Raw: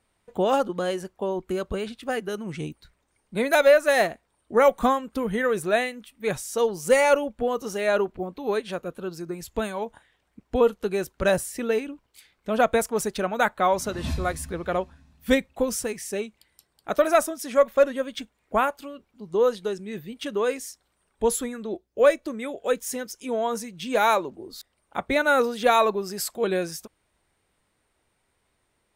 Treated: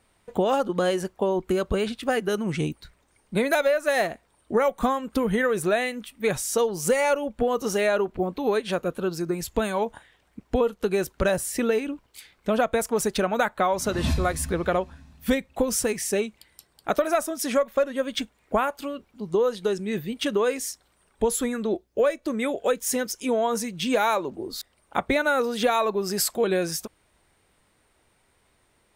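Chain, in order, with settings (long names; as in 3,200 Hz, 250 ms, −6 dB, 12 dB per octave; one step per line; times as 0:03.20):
downward compressor 6 to 1, threshold −26 dBFS, peak gain reduction 13.5 dB
level +6.5 dB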